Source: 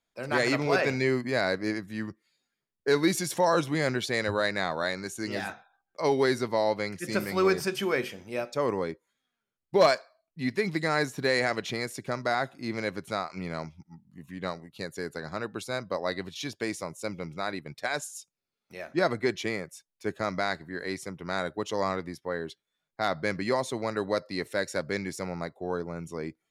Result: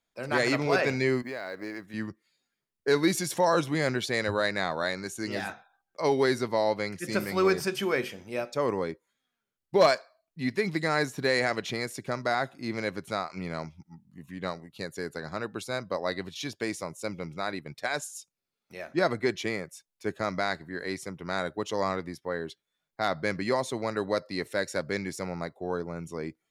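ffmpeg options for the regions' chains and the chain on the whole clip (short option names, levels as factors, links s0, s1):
-filter_complex "[0:a]asettb=1/sr,asplit=3[s0][s1][s2];[s0]atrim=end=1.224[s3];[s1]atrim=start=1.22:end=1.94,asetpts=PTS-STARTPTS,afade=t=in:d=0.004:c=qsin,afade=t=out:st=0.716:d=0.004:c=qsin,bass=f=250:g=-10,treble=f=4000:g=-7,acompressor=threshold=0.0251:ratio=6:attack=3.2:release=140:knee=1:detection=peak,acrusher=bits=8:mode=log:mix=0:aa=0.000001[s4];[s2]atrim=start=1.936[s5];[s3][s4]acrossfade=d=0.004:c1=hsin:c2=qsin[s6];[s6][s5]acrossfade=d=0.004:c1=qsin:c2=hsin"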